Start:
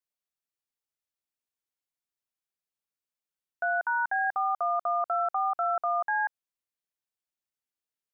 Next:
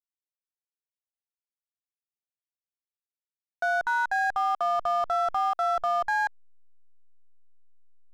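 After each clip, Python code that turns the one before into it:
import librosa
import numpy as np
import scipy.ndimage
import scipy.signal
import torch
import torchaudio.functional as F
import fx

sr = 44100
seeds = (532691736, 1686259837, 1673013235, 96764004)

y = fx.backlash(x, sr, play_db=-34.5)
y = F.gain(torch.from_numpy(y), 2.5).numpy()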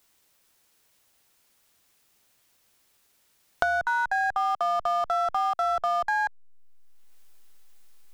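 y = fx.band_squash(x, sr, depth_pct=100)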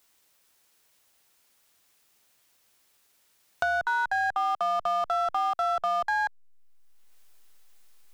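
y = fx.low_shelf(x, sr, hz=290.0, db=-5.0)
y = 10.0 ** (-15.5 / 20.0) * np.tanh(y / 10.0 ** (-15.5 / 20.0))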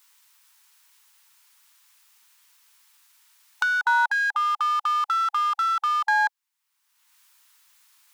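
y = fx.brickwall_highpass(x, sr, low_hz=830.0)
y = F.gain(torch.from_numpy(y), 6.5).numpy()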